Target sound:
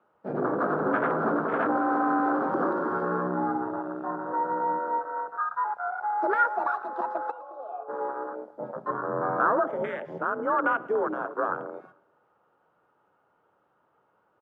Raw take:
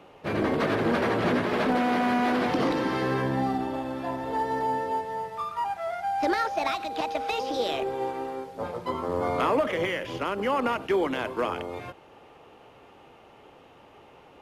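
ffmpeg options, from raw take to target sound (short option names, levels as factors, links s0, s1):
-filter_complex "[0:a]afwtdn=0.0398,equalizer=f=1400:w=2.6:g=9.5,afreqshift=46,asplit=3[s0][s1][s2];[s0]afade=t=out:st=7.3:d=0.02[s3];[s1]asplit=3[s4][s5][s6];[s4]bandpass=f=730:t=q:w=8,volume=1[s7];[s5]bandpass=f=1090:t=q:w=8,volume=0.501[s8];[s6]bandpass=f=2440:t=q:w=8,volume=0.355[s9];[s7][s8][s9]amix=inputs=3:normalize=0,afade=t=in:st=7.3:d=0.02,afade=t=out:st=7.88:d=0.02[s10];[s2]afade=t=in:st=7.88:d=0.02[s11];[s3][s10][s11]amix=inputs=3:normalize=0,highshelf=f=1800:t=q:w=1.5:g=-8.5,asplit=2[s12][s13];[s13]aecho=0:1:110|220|330|440:0.0891|0.0463|0.0241|0.0125[s14];[s12][s14]amix=inputs=2:normalize=0,volume=0.75"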